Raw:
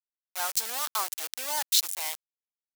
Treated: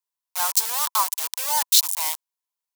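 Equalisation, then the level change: high-pass 350 Hz 24 dB/octave; peaking EQ 990 Hz +15 dB 0.31 oct; treble shelf 3.1 kHz +8.5 dB; 0.0 dB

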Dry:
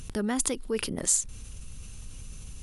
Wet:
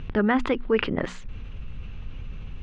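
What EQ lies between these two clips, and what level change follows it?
low-pass 2.8 kHz 24 dB/octave; hum notches 60/120/180/240 Hz; dynamic bell 1.4 kHz, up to +5 dB, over -48 dBFS, Q 0.77; +7.0 dB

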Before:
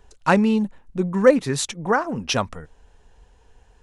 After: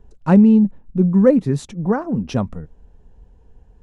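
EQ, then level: tilt shelf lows +9.5 dB, about 760 Hz; peaking EQ 190 Hz +5 dB 0.74 oct; -3.5 dB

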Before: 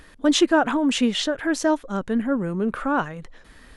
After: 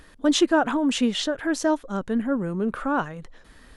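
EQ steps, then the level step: peaking EQ 2.2 kHz -2.5 dB; -1.5 dB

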